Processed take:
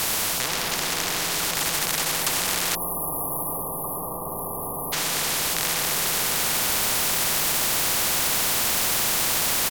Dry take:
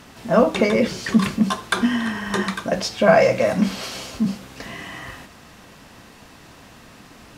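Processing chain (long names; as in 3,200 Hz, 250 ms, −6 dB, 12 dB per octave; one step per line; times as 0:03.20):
loose part that buzzes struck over −25 dBFS, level −9 dBFS
in parallel at −3.5 dB: bit-depth reduction 6 bits, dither triangular
on the sum: comb and all-pass reverb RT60 0.99 s, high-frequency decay 0.4×, pre-delay 30 ms, DRR −2.5 dB
automatic gain control gain up to 11 dB
on a send: single-tap delay 1,198 ms −8 dB
on the sum: speed change −24%
soft clipping −16 dBFS, distortion −9 dB
time-frequency box erased 0:02.75–0:04.93, 1,200–10,000 Hz
flat-topped bell 850 Hz +14.5 dB 1.1 octaves
every bin compressed towards the loudest bin 10 to 1
level −4 dB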